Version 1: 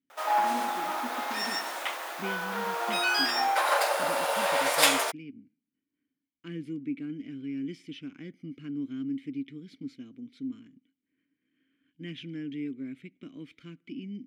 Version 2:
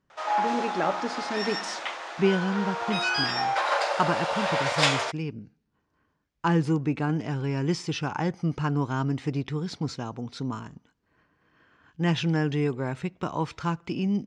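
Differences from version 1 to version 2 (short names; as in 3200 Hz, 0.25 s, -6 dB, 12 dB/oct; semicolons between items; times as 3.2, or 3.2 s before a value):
speech: remove vowel filter i; master: add LPF 6600 Hz 24 dB/oct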